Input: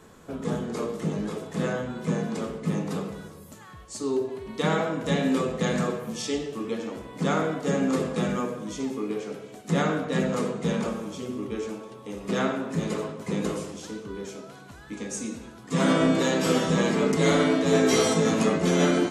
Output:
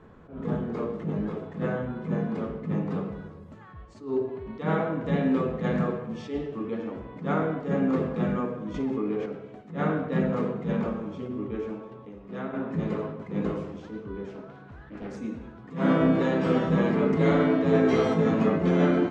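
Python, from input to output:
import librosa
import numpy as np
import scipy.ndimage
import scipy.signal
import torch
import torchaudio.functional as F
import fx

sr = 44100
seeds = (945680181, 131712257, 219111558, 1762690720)

y = fx.env_flatten(x, sr, amount_pct=70, at=(8.74, 9.26))
y = fx.doppler_dist(y, sr, depth_ms=0.55, at=(14.29, 15.17))
y = fx.edit(y, sr, fx.clip_gain(start_s=12.09, length_s=0.44, db=-8.0), tone=tone)
y = scipy.signal.sosfilt(scipy.signal.butter(2, 2000.0, 'lowpass', fs=sr, output='sos'), y)
y = fx.low_shelf(y, sr, hz=160.0, db=6.5)
y = fx.attack_slew(y, sr, db_per_s=150.0)
y = F.gain(torch.from_numpy(y), -1.5).numpy()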